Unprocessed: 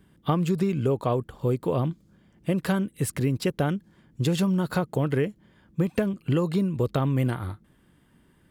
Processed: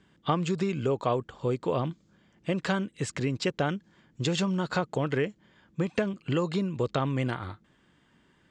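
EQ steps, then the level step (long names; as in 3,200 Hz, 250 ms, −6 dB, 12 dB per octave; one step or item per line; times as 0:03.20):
elliptic low-pass filter 7,300 Hz, stop band 80 dB
low-shelf EQ 75 Hz −6 dB
low-shelf EQ 480 Hz −6.5 dB
+2.5 dB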